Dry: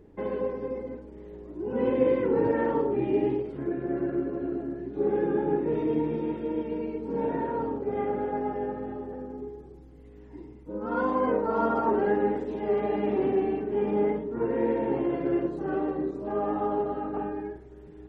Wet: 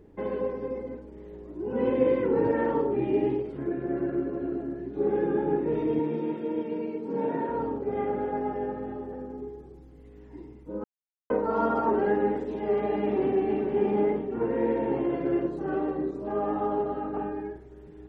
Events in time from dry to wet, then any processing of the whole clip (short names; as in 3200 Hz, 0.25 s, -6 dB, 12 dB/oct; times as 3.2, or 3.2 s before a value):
5.99–7.5 HPF 130 Hz 24 dB/oct
10.84–11.3 mute
13.01–13.54 echo throw 0.47 s, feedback 45%, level -5.5 dB